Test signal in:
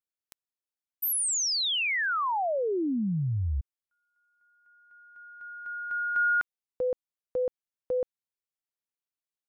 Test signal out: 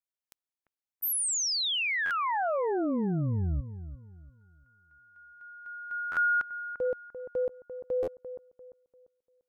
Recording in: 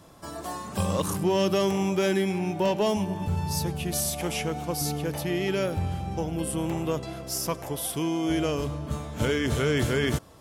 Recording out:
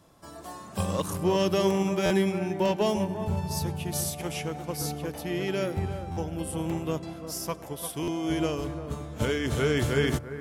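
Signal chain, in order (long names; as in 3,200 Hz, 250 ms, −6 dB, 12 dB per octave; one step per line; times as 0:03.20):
bucket-brigade delay 345 ms, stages 4,096, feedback 33%, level −8 dB
buffer that repeats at 0:02.05/0:06.11/0:08.02, samples 512, times 4
expander for the loud parts 1.5 to 1, over −34 dBFS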